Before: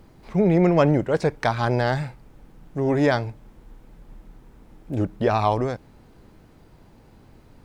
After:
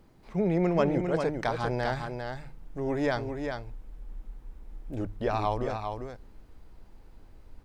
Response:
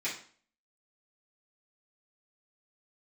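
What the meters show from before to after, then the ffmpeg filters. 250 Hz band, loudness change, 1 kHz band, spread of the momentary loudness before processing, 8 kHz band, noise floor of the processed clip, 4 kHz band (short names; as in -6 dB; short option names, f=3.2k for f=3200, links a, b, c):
-7.5 dB, -8.0 dB, -6.5 dB, 14 LU, n/a, -55 dBFS, -6.5 dB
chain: -af "bandreject=f=50:t=h:w=6,bandreject=f=100:t=h:w=6,bandreject=f=150:t=h:w=6,asubboost=boost=6.5:cutoff=53,aecho=1:1:400:0.501,volume=-7.5dB"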